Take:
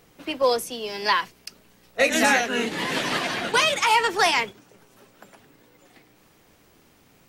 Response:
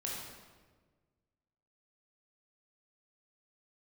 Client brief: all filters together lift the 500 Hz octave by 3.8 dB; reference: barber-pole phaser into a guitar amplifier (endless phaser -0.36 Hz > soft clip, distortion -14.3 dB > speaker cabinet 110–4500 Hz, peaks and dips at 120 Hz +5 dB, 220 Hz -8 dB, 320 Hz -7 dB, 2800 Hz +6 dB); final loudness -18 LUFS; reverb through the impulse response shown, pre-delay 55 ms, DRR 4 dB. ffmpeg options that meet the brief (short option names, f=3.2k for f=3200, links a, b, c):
-filter_complex "[0:a]equalizer=f=500:t=o:g=5,asplit=2[a][b];[1:a]atrim=start_sample=2205,adelay=55[c];[b][c]afir=irnorm=-1:irlink=0,volume=-5.5dB[d];[a][d]amix=inputs=2:normalize=0,asplit=2[e][f];[f]afreqshift=-0.36[g];[e][g]amix=inputs=2:normalize=1,asoftclip=threshold=-16dB,highpass=110,equalizer=f=120:t=q:w=4:g=5,equalizer=f=220:t=q:w=4:g=-8,equalizer=f=320:t=q:w=4:g=-7,equalizer=f=2.8k:t=q:w=4:g=6,lowpass=f=4.5k:w=0.5412,lowpass=f=4.5k:w=1.3066,volume=6.5dB"